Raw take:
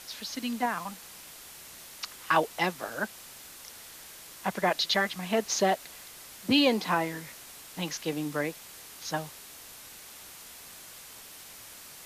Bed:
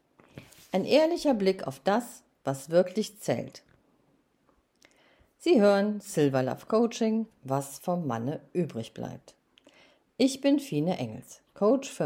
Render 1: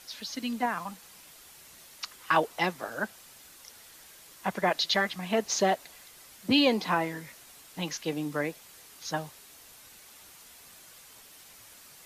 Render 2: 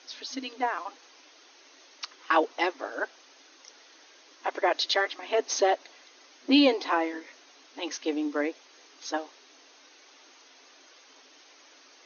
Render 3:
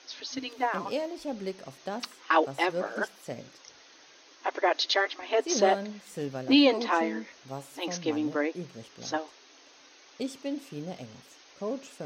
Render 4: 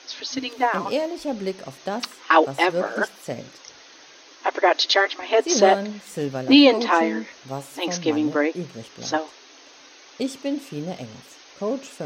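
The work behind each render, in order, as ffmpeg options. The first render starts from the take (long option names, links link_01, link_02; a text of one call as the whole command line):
ffmpeg -i in.wav -af "afftdn=noise_reduction=6:noise_floor=-48" out.wav
ffmpeg -i in.wav -af "lowshelf=frequency=400:gain=6.5,afftfilt=real='re*between(b*sr/4096,250,6600)':imag='im*between(b*sr/4096,250,6600)':win_size=4096:overlap=0.75" out.wav
ffmpeg -i in.wav -i bed.wav -filter_complex "[1:a]volume=-10dB[link_01];[0:a][link_01]amix=inputs=2:normalize=0" out.wav
ffmpeg -i in.wav -af "volume=7.5dB" out.wav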